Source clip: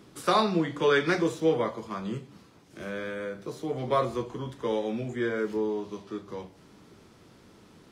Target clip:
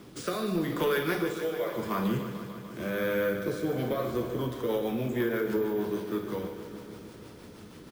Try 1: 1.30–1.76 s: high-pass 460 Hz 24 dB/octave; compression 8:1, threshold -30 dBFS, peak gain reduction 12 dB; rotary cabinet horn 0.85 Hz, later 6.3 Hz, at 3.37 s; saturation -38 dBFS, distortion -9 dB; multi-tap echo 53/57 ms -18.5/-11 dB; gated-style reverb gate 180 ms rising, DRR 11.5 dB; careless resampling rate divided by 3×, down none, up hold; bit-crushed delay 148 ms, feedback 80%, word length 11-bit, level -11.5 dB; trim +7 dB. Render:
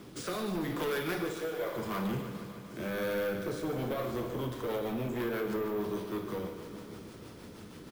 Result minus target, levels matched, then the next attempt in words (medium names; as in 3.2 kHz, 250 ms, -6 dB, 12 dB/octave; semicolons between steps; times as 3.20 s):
saturation: distortion +12 dB
1.30–1.76 s: high-pass 460 Hz 24 dB/octave; compression 8:1, threshold -30 dBFS, peak gain reduction 12 dB; rotary cabinet horn 0.85 Hz, later 6.3 Hz, at 3.37 s; saturation -27 dBFS, distortion -21 dB; multi-tap echo 53/57 ms -18.5/-11 dB; gated-style reverb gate 180 ms rising, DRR 11.5 dB; careless resampling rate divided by 3×, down none, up hold; bit-crushed delay 148 ms, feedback 80%, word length 11-bit, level -11.5 dB; trim +7 dB